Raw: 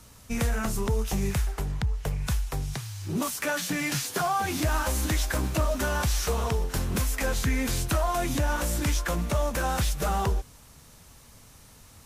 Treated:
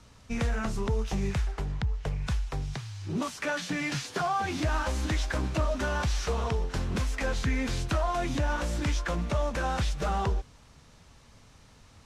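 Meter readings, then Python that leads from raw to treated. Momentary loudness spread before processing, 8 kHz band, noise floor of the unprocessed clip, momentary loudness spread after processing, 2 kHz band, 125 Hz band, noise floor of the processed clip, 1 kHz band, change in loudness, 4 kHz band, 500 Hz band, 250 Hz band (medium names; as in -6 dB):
4 LU, -9.0 dB, -52 dBFS, 4 LU, -2.0 dB, -2.0 dB, -56 dBFS, -2.0 dB, -2.5 dB, -3.5 dB, -2.0 dB, -2.0 dB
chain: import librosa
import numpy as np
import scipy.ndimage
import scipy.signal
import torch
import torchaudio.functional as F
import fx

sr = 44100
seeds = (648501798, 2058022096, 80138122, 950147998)

y = scipy.signal.sosfilt(scipy.signal.butter(2, 5200.0, 'lowpass', fs=sr, output='sos'), x)
y = F.gain(torch.from_numpy(y), -2.0).numpy()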